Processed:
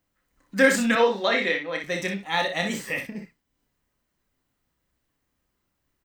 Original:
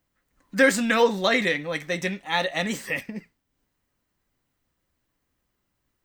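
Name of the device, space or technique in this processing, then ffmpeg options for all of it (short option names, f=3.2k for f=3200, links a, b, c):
slapback doubling: -filter_complex "[0:a]asplit=3[a][b][c];[b]adelay=30,volume=-7dB[d];[c]adelay=61,volume=-7dB[e];[a][d][e]amix=inputs=3:normalize=0,asettb=1/sr,asplit=3[f][g][h];[f]atrim=end=0.954[i];[g]atrim=start=0.95:end=1.84,asetpts=PTS-STARTPTS,afade=t=in:d=0.004:c=qsin,afade=t=out:st=0.886:d=0.004:c=qsin,acrossover=split=220 5100:gain=0.0708 1 0.178[j][k][l];[j][k][l]amix=inputs=3:normalize=0[m];[h]atrim=start=1.836[n];[i][m]acrossfade=d=0.004:c1=hsin:c2=qsin[o];[o][n]acrossfade=d=0.004:c1=qsin:c2=hsin,volume=-1.5dB"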